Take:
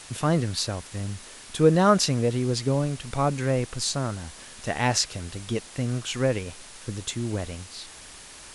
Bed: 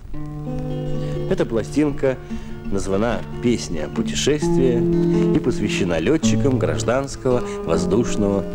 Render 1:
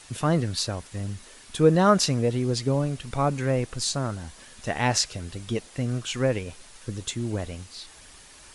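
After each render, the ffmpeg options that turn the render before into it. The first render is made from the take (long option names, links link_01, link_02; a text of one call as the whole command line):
ffmpeg -i in.wav -af "afftdn=noise_reduction=6:noise_floor=-45" out.wav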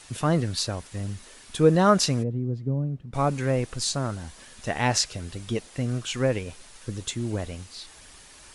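ffmpeg -i in.wav -filter_complex "[0:a]asplit=3[link_01][link_02][link_03];[link_01]afade=type=out:start_time=2.22:duration=0.02[link_04];[link_02]bandpass=frequency=150:width_type=q:width=1,afade=type=in:start_time=2.22:duration=0.02,afade=type=out:start_time=3.13:duration=0.02[link_05];[link_03]afade=type=in:start_time=3.13:duration=0.02[link_06];[link_04][link_05][link_06]amix=inputs=3:normalize=0" out.wav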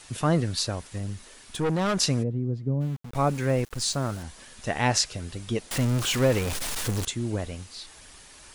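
ffmpeg -i in.wav -filter_complex "[0:a]asettb=1/sr,asplit=3[link_01][link_02][link_03];[link_01]atrim=end=0.984[link_04];[link_02]atrim=start=0.98:end=2,asetpts=PTS-STARTPTS,afade=type=in:duration=0.004:curve=qsin,afade=type=out:start_time=1.016:duration=0.004:curve=qsin,aeval=exprs='(tanh(12.6*val(0)+0.3)-tanh(0.3))/12.6':channel_layout=same[link_05];[link_03]atrim=start=1.996[link_06];[link_04][link_05]acrossfade=duration=0.004:curve1=hsin:curve2=qsin[link_07];[link_07][link_06]acrossfade=duration=0.004:curve1=qsin:curve2=hsin,asplit=3[link_08][link_09][link_10];[link_08]afade=type=out:start_time=2.8:duration=0.02[link_11];[link_09]aeval=exprs='val(0)*gte(abs(val(0)),0.01)':channel_layout=same,afade=type=in:start_time=2.8:duration=0.02,afade=type=out:start_time=4.22:duration=0.02[link_12];[link_10]afade=type=in:start_time=4.22:duration=0.02[link_13];[link_11][link_12][link_13]amix=inputs=3:normalize=0,asettb=1/sr,asplit=3[link_14][link_15][link_16];[link_14]atrim=end=5.714[link_17];[link_15]atrim=start=5.71:end=7.05,asetpts=PTS-STARTPTS,afade=type=in:duration=0.004:curve=qsin,afade=type=out:start_time=1.336:duration=0.004:curve=qsin,aeval=exprs='val(0)+0.5*0.0531*sgn(val(0))':channel_layout=same[link_18];[link_16]atrim=start=7.046[link_19];[link_17][link_18]acrossfade=duration=0.004:curve1=hsin:curve2=qsin[link_20];[link_20][link_19]acrossfade=duration=0.004:curve1=qsin:curve2=hsin" out.wav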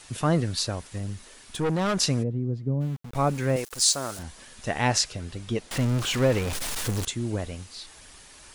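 ffmpeg -i in.wav -filter_complex "[0:a]asettb=1/sr,asplit=3[link_01][link_02][link_03];[link_01]atrim=end=3.564[link_04];[link_02]atrim=start=3.56:end=4.19,asetpts=PTS-STARTPTS,afade=type=in:duration=0.004:curve=qsin,afade=type=out:start_time=0.626:duration=0.004:curve=qsin,bass=frequency=250:gain=-13,treble=frequency=4000:gain=9[link_05];[link_03]atrim=start=4.186[link_06];[link_04][link_05]acrossfade=duration=0.004:curve1=hsin:curve2=qsin[link_07];[link_07][link_06]acrossfade=duration=0.004:curve1=qsin:curve2=hsin,asettb=1/sr,asplit=3[link_08][link_09][link_10];[link_08]atrim=end=5.124[link_11];[link_09]atrim=start=5.12:end=6.53,asetpts=PTS-STARTPTS,afade=type=in:duration=0.004:curve=qsin,afade=type=out:start_time=1.406:duration=0.004:curve=qsin,highshelf=frequency=7600:gain=-7[link_12];[link_10]atrim=start=6.526[link_13];[link_11][link_12]acrossfade=duration=0.004:curve1=hsin:curve2=qsin[link_14];[link_14][link_13]acrossfade=duration=0.004:curve1=qsin:curve2=hsin" out.wav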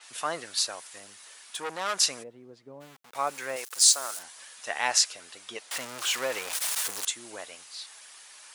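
ffmpeg -i in.wav -af "highpass=830,adynamicequalizer=threshold=0.01:dfrequency=6200:dqfactor=0.7:tfrequency=6200:tqfactor=0.7:attack=5:release=100:ratio=0.375:range=2.5:mode=boostabove:tftype=highshelf" out.wav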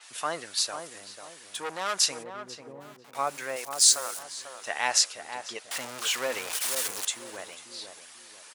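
ffmpeg -i in.wav -filter_complex "[0:a]asplit=2[link_01][link_02];[link_02]adelay=493,lowpass=frequency=1100:poles=1,volume=-6.5dB,asplit=2[link_03][link_04];[link_04]adelay=493,lowpass=frequency=1100:poles=1,volume=0.38,asplit=2[link_05][link_06];[link_06]adelay=493,lowpass=frequency=1100:poles=1,volume=0.38,asplit=2[link_07][link_08];[link_08]adelay=493,lowpass=frequency=1100:poles=1,volume=0.38[link_09];[link_01][link_03][link_05][link_07][link_09]amix=inputs=5:normalize=0" out.wav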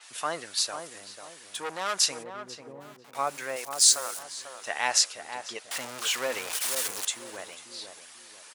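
ffmpeg -i in.wav -af anull out.wav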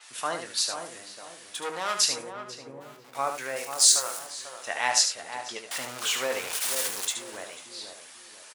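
ffmpeg -i in.wav -filter_complex "[0:a]asplit=2[link_01][link_02];[link_02]adelay=23,volume=-10.5dB[link_03];[link_01][link_03]amix=inputs=2:normalize=0,asplit=2[link_04][link_05];[link_05]aecho=0:1:74:0.422[link_06];[link_04][link_06]amix=inputs=2:normalize=0" out.wav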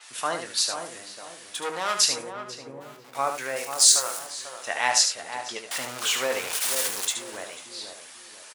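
ffmpeg -i in.wav -af "volume=2.5dB,alimiter=limit=-3dB:level=0:latency=1" out.wav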